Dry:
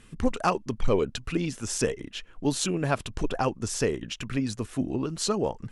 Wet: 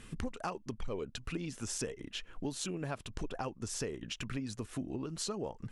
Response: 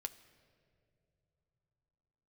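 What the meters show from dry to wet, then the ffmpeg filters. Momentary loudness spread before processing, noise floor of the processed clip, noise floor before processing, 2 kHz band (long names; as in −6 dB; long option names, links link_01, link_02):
5 LU, −58 dBFS, −52 dBFS, −10.5 dB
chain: -af "acompressor=threshold=-39dB:ratio=4,volume=1.5dB"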